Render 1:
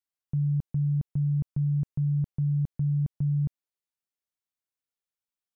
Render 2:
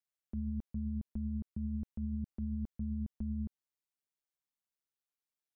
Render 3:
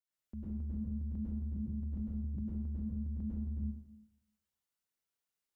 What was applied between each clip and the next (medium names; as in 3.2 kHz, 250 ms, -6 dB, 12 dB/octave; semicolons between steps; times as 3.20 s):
ring modulator 70 Hz; peak limiter -29.5 dBFS, peak gain reduction 7.5 dB; trim -1.5 dB
plate-style reverb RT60 0.91 s, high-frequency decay 0.85×, pre-delay 90 ms, DRR -8 dB; trim -5.5 dB